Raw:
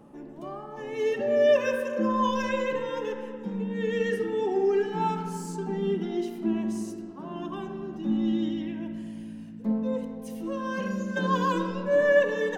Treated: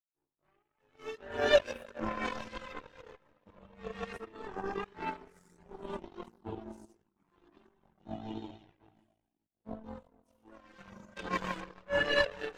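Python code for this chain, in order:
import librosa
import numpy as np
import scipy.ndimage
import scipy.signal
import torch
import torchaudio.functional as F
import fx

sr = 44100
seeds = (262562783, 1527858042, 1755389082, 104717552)

y = fx.echo_tape(x, sr, ms=432, feedback_pct=73, wet_db=-15.5, lp_hz=5400.0, drive_db=7.0, wow_cents=22)
y = fx.power_curve(y, sr, exponent=3.0)
y = fx.chorus_voices(y, sr, voices=4, hz=0.61, base_ms=21, depth_ms=1.7, mix_pct=65)
y = y * 10.0 ** (6.5 / 20.0)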